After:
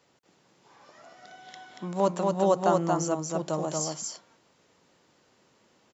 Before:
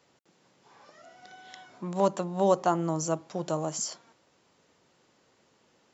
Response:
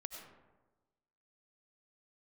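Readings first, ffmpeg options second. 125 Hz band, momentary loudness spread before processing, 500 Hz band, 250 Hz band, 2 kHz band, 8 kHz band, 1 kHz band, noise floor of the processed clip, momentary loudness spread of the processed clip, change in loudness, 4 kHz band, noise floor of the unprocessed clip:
+1.5 dB, 23 LU, +2.0 dB, +1.5 dB, +1.5 dB, no reading, +1.5 dB, -66 dBFS, 22 LU, +1.5 dB, +1.5 dB, -67 dBFS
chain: -af "aecho=1:1:233:0.708"

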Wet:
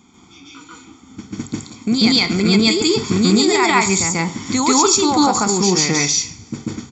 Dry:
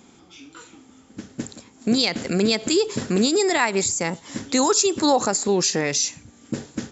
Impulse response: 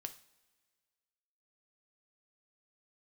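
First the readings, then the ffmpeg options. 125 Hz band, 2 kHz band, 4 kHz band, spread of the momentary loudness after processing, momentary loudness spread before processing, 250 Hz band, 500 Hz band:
+8.5 dB, +6.5 dB, +7.0 dB, 15 LU, 15 LU, +7.0 dB, +2.0 dB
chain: -filter_complex "[0:a]aecho=1:1:0.9:0.7,dynaudnorm=f=200:g=9:m=1.58,asplit=2[s0][s1];[1:a]atrim=start_sample=2205,adelay=141[s2];[s1][s2]afir=irnorm=-1:irlink=0,volume=2.24[s3];[s0][s3]amix=inputs=2:normalize=0,volume=0.75"

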